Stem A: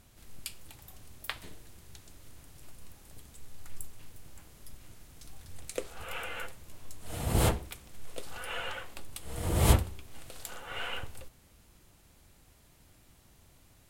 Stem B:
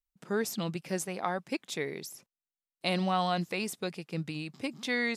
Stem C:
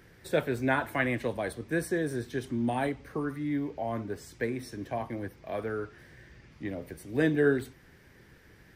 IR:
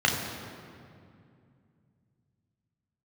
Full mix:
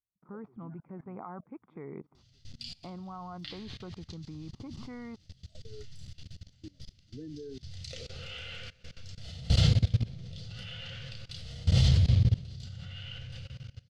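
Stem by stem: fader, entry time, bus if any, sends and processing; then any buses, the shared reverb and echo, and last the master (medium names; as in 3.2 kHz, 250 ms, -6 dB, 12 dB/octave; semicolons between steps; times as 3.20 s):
0.0 dB, 2.15 s, send -6.5 dB, FFT filter 160 Hz 0 dB, 310 Hz -19 dB, 540 Hz -10 dB, 900 Hz -23 dB, 4.8 kHz +9 dB, 12 kHz -24 dB
+3.0 dB, 0.00 s, no send, low-pass 1.3 kHz 24 dB/octave; gate with hold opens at -54 dBFS; comb 0.9 ms, depth 54%
-2.0 dB, 0.00 s, no send, compression 2:1, threshold -32 dBFS, peak gain reduction 7.5 dB; bass shelf 190 Hz +9 dB; spectral contrast expander 2.5:1; auto duck -22 dB, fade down 2.00 s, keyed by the second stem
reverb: on, RT60 2.4 s, pre-delay 3 ms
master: level held to a coarse grid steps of 21 dB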